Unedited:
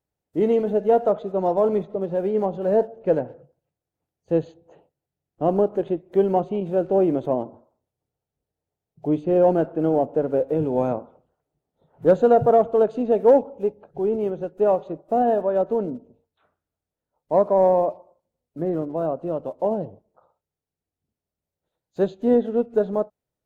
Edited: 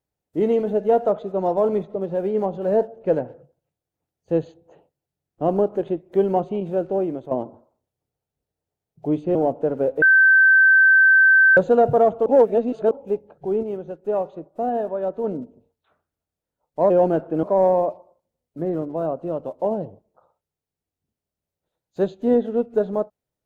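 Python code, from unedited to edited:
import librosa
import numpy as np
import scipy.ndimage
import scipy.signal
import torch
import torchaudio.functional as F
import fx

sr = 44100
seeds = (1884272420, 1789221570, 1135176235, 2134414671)

y = fx.edit(x, sr, fx.fade_out_to(start_s=6.66, length_s=0.65, floor_db=-10.5),
    fx.move(start_s=9.35, length_s=0.53, to_s=17.43),
    fx.bleep(start_s=10.55, length_s=1.55, hz=1550.0, db=-10.0),
    fx.reverse_span(start_s=12.79, length_s=0.65),
    fx.clip_gain(start_s=14.16, length_s=1.61, db=-4.0), tone=tone)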